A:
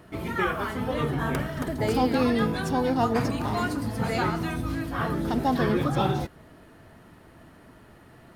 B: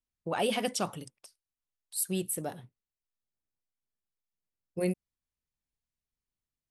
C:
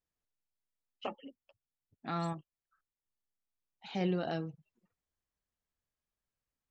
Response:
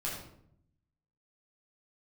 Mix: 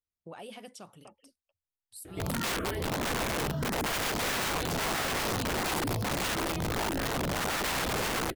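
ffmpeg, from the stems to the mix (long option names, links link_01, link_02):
-filter_complex "[0:a]lowshelf=frequency=510:width_type=q:width=1.5:gain=6.5,asplit=2[link_01][link_02];[link_02]afreqshift=1.6[link_03];[link_01][link_03]amix=inputs=2:normalize=1,adelay=2050,volume=0.5dB[link_04];[1:a]volume=-8.5dB[link_05];[2:a]equalizer=frequency=80:width_type=o:width=0.42:gain=14.5,volume=-13dB[link_06];[link_05][link_06]amix=inputs=2:normalize=0,alimiter=level_in=11dB:limit=-24dB:level=0:latency=1:release=354,volume=-11dB,volume=0dB[link_07];[link_04][link_07]amix=inputs=2:normalize=0,aeval=exprs='(mod(11.9*val(0)+1,2)-1)/11.9':channel_layout=same,alimiter=level_in=2dB:limit=-24dB:level=0:latency=1:release=22,volume=-2dB"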